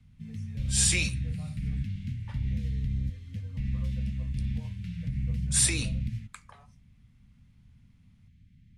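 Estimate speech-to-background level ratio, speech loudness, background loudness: 7.5 dB, -26.0 LUFS, -33.5 LUFS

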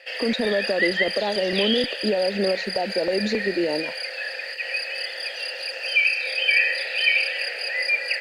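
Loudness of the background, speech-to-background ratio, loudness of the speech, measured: -23.5 LUFS, -1.5 dB, -25.0 LUFS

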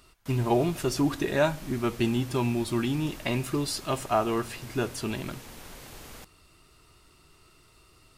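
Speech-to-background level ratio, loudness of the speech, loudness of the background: 17.0 dB, -28.5 LUFS, -45.5 LUFS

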